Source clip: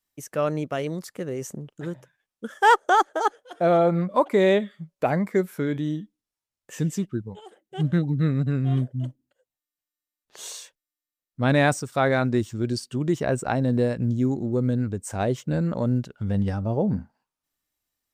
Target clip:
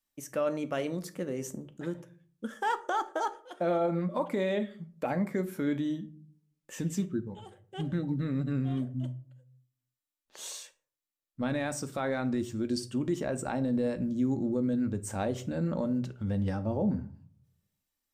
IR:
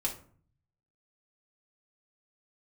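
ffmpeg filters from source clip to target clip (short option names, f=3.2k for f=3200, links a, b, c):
-filter_complex "[0:a]alimiter=limit=-18dB:level=0:latency=1:release=60,asplit=2[a][b];[1:a]atrim=start_sample=2205[c];[b][c]afir=irnorm=-1:irlink=0,volume=-7dB[d];[a][d]amix=inputs=2:normalize=0,volume=-7dB"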